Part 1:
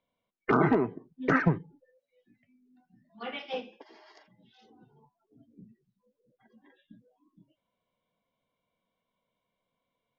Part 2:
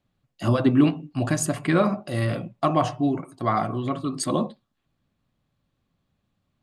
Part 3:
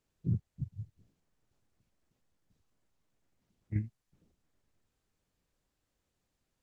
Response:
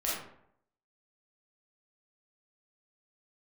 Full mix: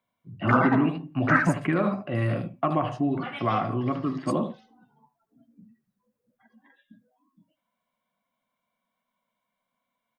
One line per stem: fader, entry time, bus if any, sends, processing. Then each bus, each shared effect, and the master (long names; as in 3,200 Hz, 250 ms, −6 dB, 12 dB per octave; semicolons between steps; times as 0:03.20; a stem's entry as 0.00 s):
−7.5 dB, 0.00 s, no bus, no send, echo send −18.5 dB, drawn EQ curve 130 Hz 0 dB, 240 Hz +11 dB, 380 Hz −6 dB, 640 Hz +9 dB, 1,600 Hz +14 dB, 2,900 Hz +6 dB
+1.5 dB, 0.00 s, bus A, no send, echo send −14.5 dB, high-shelf EQ 6,900 Hz −11.5 dB; noise gate with hold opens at −42 dBFS
−6.0 dB, 0.00 s, bus A, no send, echo send −16 dB, Bessel low-pass filter 1,100 Hz; automatic ducking −19 dB, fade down 0.95 s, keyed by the second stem
bus A: 0.0 dB, Chebyshev band-pass filter 100–2,800 Hz, order 4; downward compressor 2.5 to 1, threshold −23 dBFS, peak gain reduction 8.5 dB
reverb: not used
echo: single-tap delay 76 ms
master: high-shelf EQ 7,400 Hz +7 dB